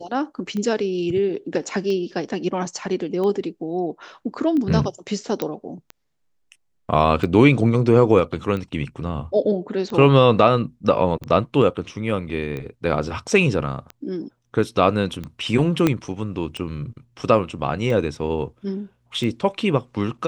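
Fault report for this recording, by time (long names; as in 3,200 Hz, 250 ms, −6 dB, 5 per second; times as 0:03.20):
scratch tick 45 rpm −18 dBFS
0:05.42: click −10 dBFS
0:15.87: click −5 dBFS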